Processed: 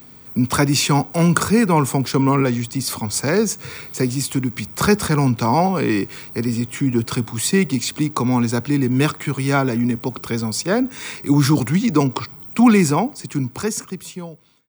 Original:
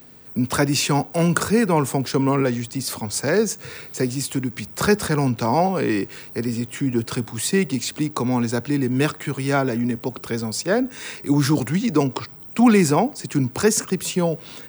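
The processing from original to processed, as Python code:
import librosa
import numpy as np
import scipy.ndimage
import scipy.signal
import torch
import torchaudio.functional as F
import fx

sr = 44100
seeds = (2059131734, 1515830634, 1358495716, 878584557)

y = fx.fade_out_tail(x, sr, length_s=2.28)
y = y + 0.31 * np.pad(y, (int(0.9 * sr / 1000.0), 0))[:len(y)]
y = y * librosa.db_to_amplitude(2.5)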